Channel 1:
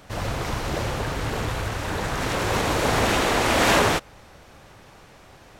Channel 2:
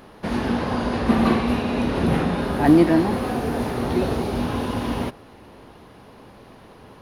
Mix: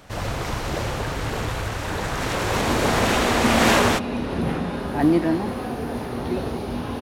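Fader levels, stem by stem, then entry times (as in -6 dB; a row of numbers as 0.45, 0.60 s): +0.5, -4.0 dB; 0.00, 2.35 s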